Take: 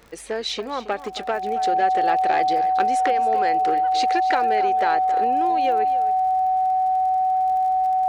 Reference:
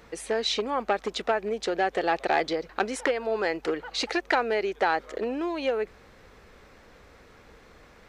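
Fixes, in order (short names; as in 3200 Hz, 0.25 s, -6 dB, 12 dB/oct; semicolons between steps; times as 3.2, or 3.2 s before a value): de-click; notch 750 Hz, Q 30; inverse comb 0.273 s -14.5 dB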